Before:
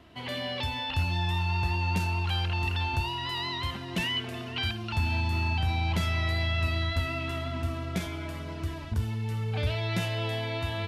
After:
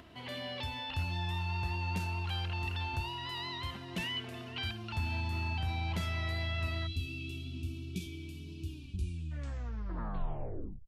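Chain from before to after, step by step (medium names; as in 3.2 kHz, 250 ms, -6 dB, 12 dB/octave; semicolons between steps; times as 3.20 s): tape stop on the ending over 2.25 s; upward compressor, threshold -41 dBFS; time-frequency box 6.87–9.32 s, 430–2300 Hz -27 dB; trim -7 dB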